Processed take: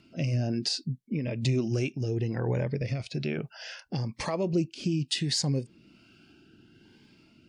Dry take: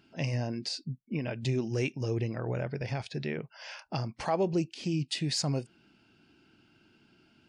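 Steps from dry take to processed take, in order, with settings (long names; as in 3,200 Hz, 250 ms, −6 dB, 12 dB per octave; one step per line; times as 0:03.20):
downward compressor 2 to 1, threshold −34 dBFS, peak gain reduction 6 dB
rotating-speaker cabinet horn 1.1 Hz
phaser whose notches keep moving one way rising 0.68 Hz
level +8.5 dB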